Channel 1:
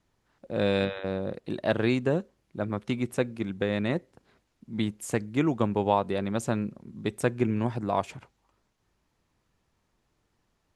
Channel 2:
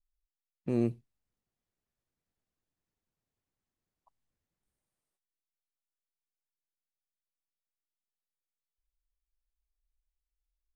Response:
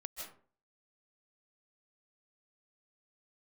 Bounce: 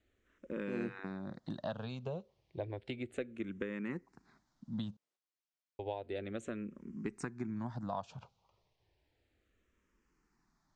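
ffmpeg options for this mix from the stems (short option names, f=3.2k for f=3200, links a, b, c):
-filter_complex "[0:a]acompressor=threshold=-33dB:ratio=6,asplit=2[a][b];[b]afreqshift=-0.32[c];[a][c]amix=inputs=2:normalize=1,volume=-0.5dB,asplit=3[d][e][f];[d]atrim=end=4.97,asetpts=PTS-STARTPTS,afade=t=out:st=4.966:d=0.004:c=hsin[g];[e]atrim=start=4.97:end=5.79,asetpts=PTS-STARTPTS,volume=0[h];[f]atrim=start=5.79,asetpts=PTS-STARTPTS,afade=t=in:d=0.004:c=hsin[i];[g][h][i]concat=n=3:v=0:a=1,asplit=2[j][k];[1:a]highpass=200,volume=-0.5dB[l];[k]apad=whole_len=474254[m];[l][m]sidechaincompress=threshold=-46dB:ratio=8:attack=16:release=205[n];[j][n]amix=inputs=2:normalize=0,lowpass=f=7k:w=0.5412,lowpass=f=7k:w=1.3066"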